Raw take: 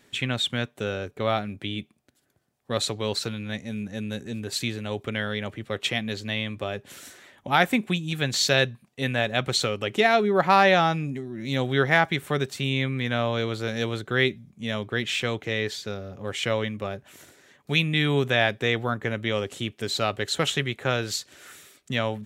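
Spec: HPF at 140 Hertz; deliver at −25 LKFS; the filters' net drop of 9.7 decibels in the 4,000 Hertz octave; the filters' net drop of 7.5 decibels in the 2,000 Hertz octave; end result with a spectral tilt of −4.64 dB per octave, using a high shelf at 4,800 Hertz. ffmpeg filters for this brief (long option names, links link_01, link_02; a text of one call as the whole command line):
ffmpeg -i in.wav -af "highpass=140,equalizer=frequency=2000:width_type=o:gain=-7,equalizer=frequency=4000:width_type=o:gain=-8,highshelf=frequency=4800:gain=-3.5,volume=4dB" out.wav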